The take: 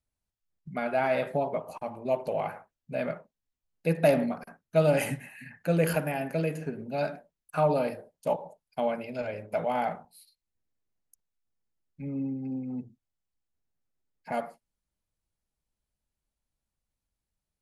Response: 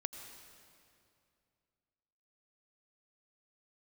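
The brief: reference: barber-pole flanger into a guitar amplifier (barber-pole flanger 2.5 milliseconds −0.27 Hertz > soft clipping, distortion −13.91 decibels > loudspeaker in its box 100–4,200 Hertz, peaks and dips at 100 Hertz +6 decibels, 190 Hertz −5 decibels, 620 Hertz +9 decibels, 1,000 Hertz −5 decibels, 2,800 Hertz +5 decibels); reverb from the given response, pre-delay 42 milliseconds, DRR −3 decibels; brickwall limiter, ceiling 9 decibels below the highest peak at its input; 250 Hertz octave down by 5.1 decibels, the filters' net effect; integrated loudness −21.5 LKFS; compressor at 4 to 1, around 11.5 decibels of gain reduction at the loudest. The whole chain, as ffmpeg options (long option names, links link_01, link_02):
-filter_complex "[0:a]equalizer=frequency=250:width_type=o:gain=-5.5,acompressor=threshold=-32dB:ratio=4,alimiter=level_in=4.5dB:limit=-24dB:level=0:latency=1,volume=-4.5dB,asplit=2[link_01][link_02];[1:a]atrim=start_sample=2205,adelay=42[link_03];[link_02][link_03]afir=irnorm=-1:irlink=0,volume=4dB[link_04];[link_01][link_04]amix=inputs=2:normalize=0,asplit=2[link_05][link_06];[link_06]adelay=2.5,afreqshift=-0.27[link_07];[link_05][link_07]amix=inputs=2:normalize=1,asoftclip=threshold=-33dB,highpass=100,equalizer=frequency=100:width_type=q:width=4:gain=6,equalizer=frequency=190:width_type=q:width=4:gain=-5,equalizer=frequency=620:width_type=q:width=4:gain=9,equalizer=frequency=1000:width_type=q:width=4:gain=-5,equalizer=frequency=2800:width_type=q:width=4:gain=5,lowpass=frequency=4200:width=0.5412,lowpass=frequency=4200:width=1.3066,volume=15dB"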